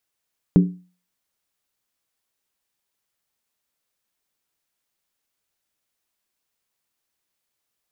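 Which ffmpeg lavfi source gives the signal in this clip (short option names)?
-f lavfi -i "aevalsrc='0.447*pow(10,-3*t/0.37)*sin(2*PI*180*t)+0.2*pow(10,-3*t/0.293)*sin(2*PI*286.9*t)+0.0891*pow(10,-3*t/0.253)*sin(2*PI*384.5*t)+0.0398*pow(10,-3*t/0.244)*sin(2*PI*413.3*t)+0.0178*pow(10,-3*t/0.227)*sin(2*PI*477.5*t)':d=0.63:s=44100"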